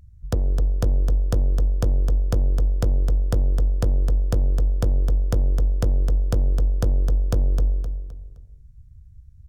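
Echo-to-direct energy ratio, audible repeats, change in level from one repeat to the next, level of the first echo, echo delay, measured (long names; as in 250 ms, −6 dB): −6.0 dB, 4, −9.5 dB, −6.5 dB, 259 ms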